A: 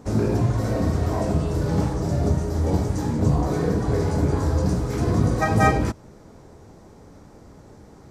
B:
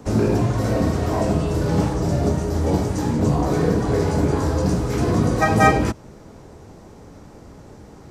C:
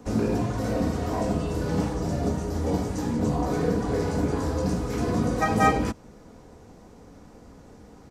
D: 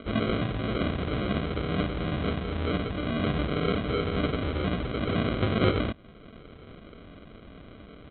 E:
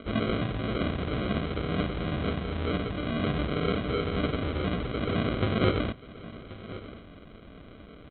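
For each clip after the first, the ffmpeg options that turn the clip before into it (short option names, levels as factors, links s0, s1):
-filter_complex "[0:a]equalizer=f=2800:t=o:w=0.44:g=3.5,acrossover=split=160|550|2300[s0][s1][s2][s3];[s0]alimiter=limit=0.0794:level=0:latency=1:release=277[s4];[s4][s1][s2][s3]amix=inputs=4:normalize=0,volume=1.58"
-af "aecho=1:1:4.1:0.33,volume=0.501"
-af "acompressor=mode=upward:threshold=0.0141:ratio=2.5,aresample=8000,acrusher=samples=9:mix=1:aa=0.000001,aresample=44100,volume=0.75"
-af "aecho=1:1:1081:0.15,volume=0.891"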